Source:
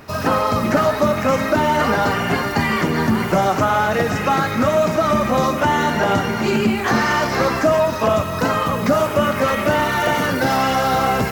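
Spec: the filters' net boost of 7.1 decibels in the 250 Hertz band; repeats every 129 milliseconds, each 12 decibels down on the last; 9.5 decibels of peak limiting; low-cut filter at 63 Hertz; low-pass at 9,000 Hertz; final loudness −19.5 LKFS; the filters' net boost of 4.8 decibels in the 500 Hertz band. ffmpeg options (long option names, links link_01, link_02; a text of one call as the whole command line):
ffmpeg -i in.wav -af "highpass=63,lowpass=9000,equalizer=frequency=250:width_type=o:gain=7.5,equalizer=frequency=500:width_type=o:gain=4.5,alimiter=limit=-8dB:level=0:latency=1,aecho=1:1:129|258|387:0.251|0.0628|0.0157,volume=-3dB" out.wav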